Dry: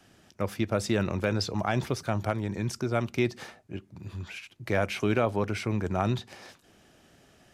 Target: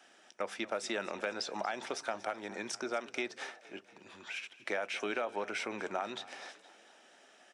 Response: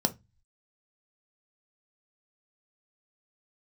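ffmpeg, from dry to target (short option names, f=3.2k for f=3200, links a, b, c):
-filter_complex "[0:a]highpass=510,equalizer=f=1.9k:t=o:w=2.9:g=4,acompressor=threshold=-30dB:ratio=6,asplit=6[a][b][c][d][e][f];[b]adelay=234,afreqshift=32,volume=-18.5dB[g];[c]adelay=468,afreqshift=64,volume=-23.4dB[h];[d]adelay=702,afreqshift=96,volume=-28.3dB[i];[e]adelay=936,afreqshift=128,volume=-33.1dB[j];[f]adelay=1170,afreqshift=160,volume=-38dB[k];[a][g][h][i][j][k]amix=inputs=6:normalize=0,asplit=2[l][m];[1:a]atrim=start_sample=2205[n];[m][n]afir=irnorm=-1:irlink=0,volume=-19.5dB[o];[l][o]amix=inputs=2:normalize=0,aresample=22050,aresample=44100,volume=-3.5dB"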